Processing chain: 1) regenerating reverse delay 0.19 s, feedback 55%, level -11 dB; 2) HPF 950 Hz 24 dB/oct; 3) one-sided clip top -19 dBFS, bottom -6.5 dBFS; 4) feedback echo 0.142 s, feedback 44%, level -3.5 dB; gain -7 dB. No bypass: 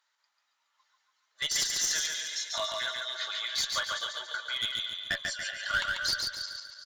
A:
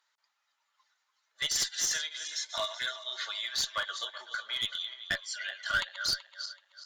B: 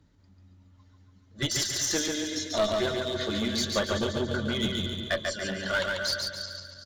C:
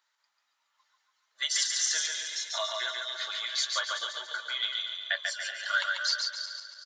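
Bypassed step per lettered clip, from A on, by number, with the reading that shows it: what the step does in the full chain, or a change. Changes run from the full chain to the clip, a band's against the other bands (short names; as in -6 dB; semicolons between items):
4, echo-to-direct -2.5 dB to none; 2, crest factor change -3.0 dB; 3, distortion -15 dB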